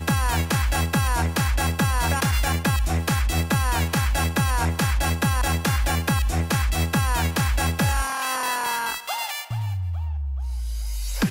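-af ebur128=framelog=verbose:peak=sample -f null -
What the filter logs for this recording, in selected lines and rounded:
Integrated loudness:
  I:         -23.6 LUFS
  Threshold: -33.6 LUFS
Loudness range:
  LRA:         3.1 LU
  Threshold: -43.3 LUFS
  LRA low:   -25.7 LUFS
  LRA high:  -22.7 LUFS
Sample peak:
  Peak:      -11.0 dBFS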